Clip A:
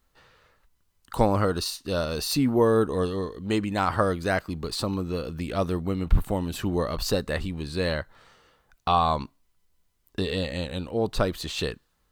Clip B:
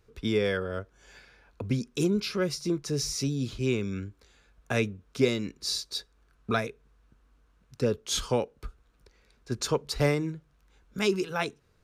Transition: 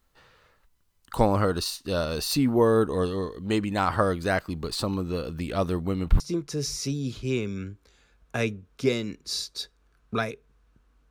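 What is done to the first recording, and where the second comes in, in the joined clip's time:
clip A
6.20 s: go over to clip B from 2.56 s

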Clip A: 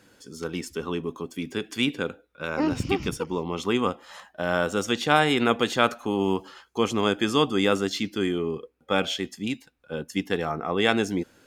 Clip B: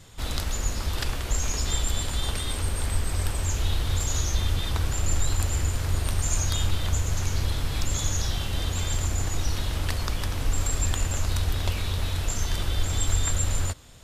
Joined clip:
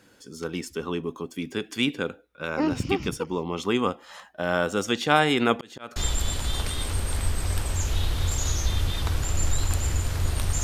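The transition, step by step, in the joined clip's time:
clip A
5.53–5.96 s: slow attack 535 ms
5.96 s: go over to clip B from 1.65 s

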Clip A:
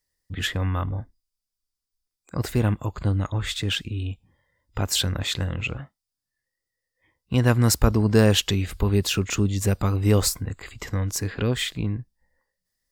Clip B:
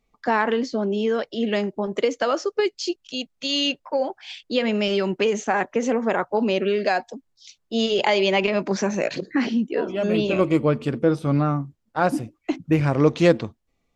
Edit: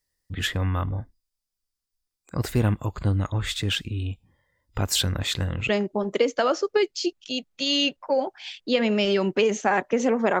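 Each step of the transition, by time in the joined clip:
clip A
5.69 s: go over to clip B from 1.52 s

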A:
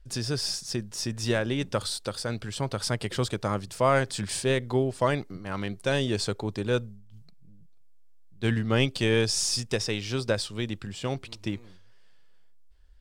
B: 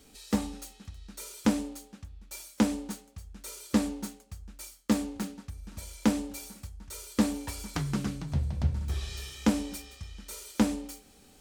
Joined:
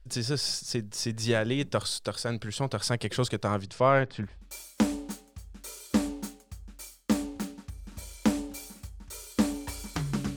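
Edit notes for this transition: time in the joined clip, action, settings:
A
3.62–4.39 s: low-pass 7.6 kHz -> 1.1 kHz
4.29 s: go over to B from 2.09 s, crossfade 0.20 s

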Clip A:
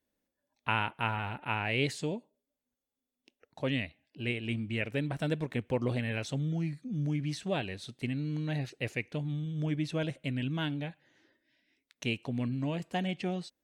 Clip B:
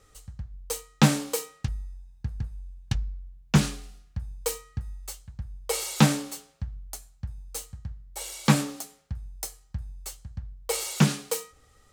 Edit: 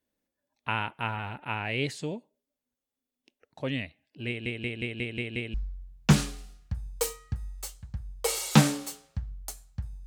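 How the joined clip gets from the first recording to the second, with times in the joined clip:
clip A
4.28 s: stutter in place 0.18 s, 7 plays
5.54 s: go over to clip B from 2.99 s

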